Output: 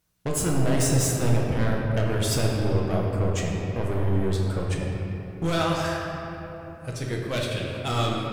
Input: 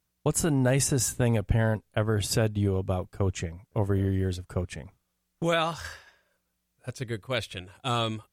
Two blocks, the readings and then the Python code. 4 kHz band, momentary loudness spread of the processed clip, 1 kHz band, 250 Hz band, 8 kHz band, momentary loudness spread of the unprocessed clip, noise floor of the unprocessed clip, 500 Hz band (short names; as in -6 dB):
+2.0 dB, 10 LU, +3.0 dB, +2.5 dB, +1.0 dB, 14 LU, -78 dBFS, +2.0 dB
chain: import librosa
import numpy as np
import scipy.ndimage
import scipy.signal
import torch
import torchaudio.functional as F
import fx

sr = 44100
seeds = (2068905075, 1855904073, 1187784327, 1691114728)

y = 10.0 ** (-27.5 / 20.0) * np.tanh(x / 10.0 ** (-27.5 / 20.0))
y = fx.room_shoebox(y, sr, seeds[0], volume_m3=190.0, walls='hard', distance_m=0.61)
y = y * 10.0 ** (3.5 / 20.0)